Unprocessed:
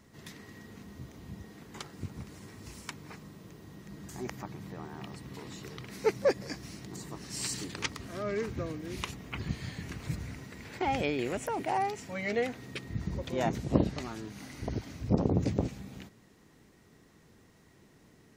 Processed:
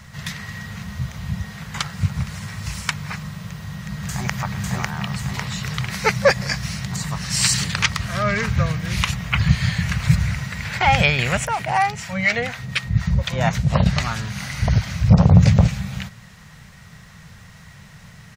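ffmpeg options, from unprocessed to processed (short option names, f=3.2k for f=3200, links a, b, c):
-filter_complex "[0:a]asplit=2[a][b];[b]afade=t=in:st=3.47:d=0.01,afade=t=out:st=4.35:d=0.01,aecho=0:1:550|1100|1650|2200|2750|3300|3850|4400|4950:0.841395|0.504837|0.302902|0.181741|0.109045|0.0654269|0.0392561|0.0235537|0.0141322[c];[a][c]amix=inputs=2:normalize=0,asettb=1/sr,asplit=3[d][e][f];[d]atrim=end=11.454[g];[e]atrim=start=11.45:end=13.86,asetpts=PTS-STARTPTS,afade=t=in:d=0.004:c=qsin,afade=t=out:st=2.406:d=0.004:c=qsin,acrossover=split=560[h][i];[h]aeval=exprs='val(0)*(1-0.7/2+0.7/2*cos(2*PI*4.1*n/s))':c=same[j];[i]aeval=exprs='val(0)*(1-0.7/2-0.7/2*cos(2*PI*4.1*n/s))':c=same[k];[j][k]amix=inputs=2:normalize=0[l];[f]atrim=start=13.856[m];[g][l]acrossfade=d=0.004:c1=hsin:c2=qsin[n];[n][m]acrossfade=d=0.004:c1=qsin:c2=hsin,firequalizer=gain_entry='entry(170,0);entry(300,-28);entry(550,-9);entry(1400,0);entry(11000,-6)':delay=0.05:min_phase=1,alimiter=level_in=21dB:limit=-1dB:release=50:level=0:latency=1,volume=-1dB"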